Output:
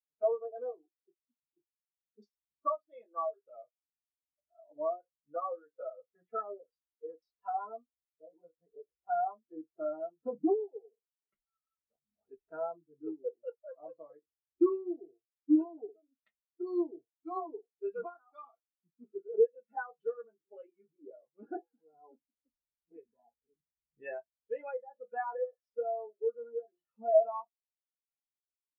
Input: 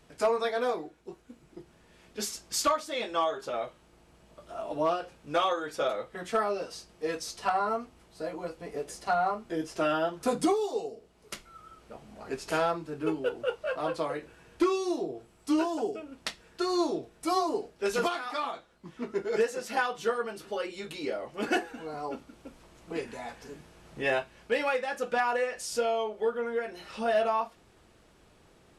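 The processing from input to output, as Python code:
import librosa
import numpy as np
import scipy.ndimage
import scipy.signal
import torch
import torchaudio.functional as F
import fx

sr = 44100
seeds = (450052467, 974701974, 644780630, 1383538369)

y = fx.low_shelf(x, sr, hz=130.0, db=4.0)
y = fx.filter_lfo_lowpass(y, sr, shape='saw_down', hz=1.8, low_hz=840.0, high_hz=4800.0, q=1.1)
y = fx.spectral_expand(y, sr, expansion=2.5)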